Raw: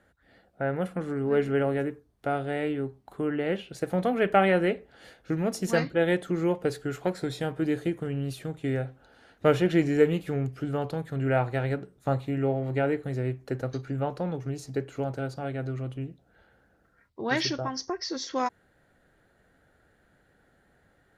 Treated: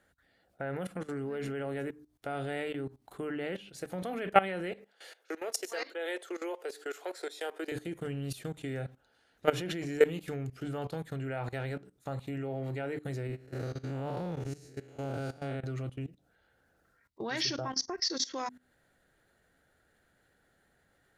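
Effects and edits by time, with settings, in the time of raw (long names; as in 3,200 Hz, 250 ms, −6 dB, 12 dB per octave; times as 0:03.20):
0:04.72–0:07.72: Butterworth high-pass 370 Hz
0:13.27–0:15.64: spectrum smeared in time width 187 ms
whole clip: mains-hum notches 50/100/150/200/250/300 Hz; output level in coarse steps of 18 dB; high-shelf EQ 2,500 Hz +8.5 dB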